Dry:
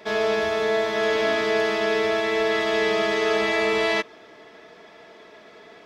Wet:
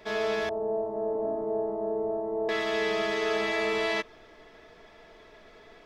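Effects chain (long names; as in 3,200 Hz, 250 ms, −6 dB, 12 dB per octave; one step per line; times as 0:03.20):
0:00.49–0:02.49: Chebyshev low-pass filter 870 Hz, order 4
background noise brown −55 dBFS
level −6 dB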